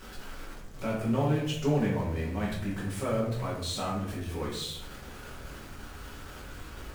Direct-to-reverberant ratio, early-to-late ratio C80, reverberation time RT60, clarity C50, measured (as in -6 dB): -6.5 dB, 7.0 dB, 0.85 s, 3.5 dB